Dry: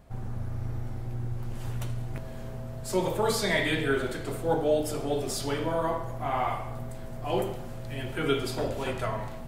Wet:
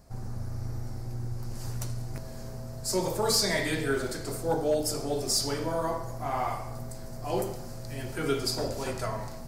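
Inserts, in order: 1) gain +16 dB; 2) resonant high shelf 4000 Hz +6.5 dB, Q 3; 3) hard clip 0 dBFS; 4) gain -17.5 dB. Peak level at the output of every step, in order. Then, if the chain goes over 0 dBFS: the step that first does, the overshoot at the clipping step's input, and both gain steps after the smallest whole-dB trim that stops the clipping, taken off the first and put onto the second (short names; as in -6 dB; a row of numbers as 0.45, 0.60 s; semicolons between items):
+2.5, +5.5, 0.0, -17.5 dBFS; step 1, 5.5 dB; step 1 +10 dB, step 4 -11.5 dB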